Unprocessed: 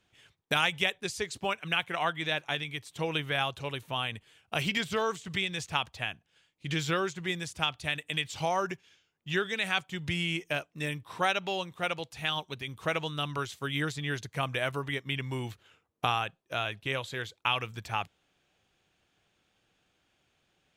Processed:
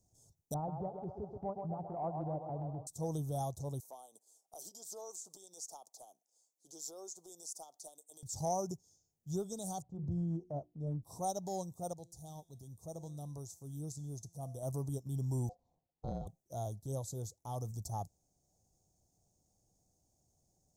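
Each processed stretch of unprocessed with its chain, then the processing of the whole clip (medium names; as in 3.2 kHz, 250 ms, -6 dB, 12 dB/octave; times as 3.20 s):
0.54–2.87 s: low-pass 1.3 kHz 24 dB/octave + thinning echo 129 ms, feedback 72%, high-pass 300 Hz, level -5.5 dB
3.80–8.23 s: high-pass 320 Hz 24 dB/octave + bass shelf 430 Hz -9.5 dB + compression 2:1, threshold -40 dBFS
9.82–11.03 s: low-pass 1.1 kHz + hum notches 60/120/180/240/300/360 Hz
11.93–14.63 s: peaking EQ 1.6 kHz -8 dB 0.67 oct + feedback comb 170 Hz, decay 0.96 s
15.49–16.27 s: tape spacing loss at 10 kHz 34 dB + ring modulator 620 Hz
whole clip: elliptic band-stop 730–6000 Hz, stop band 60 dB; peaking EQ 430 Hz -11 dB 2.5 oct; transient shaper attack -6 dB, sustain -2 dB; trim +6 dB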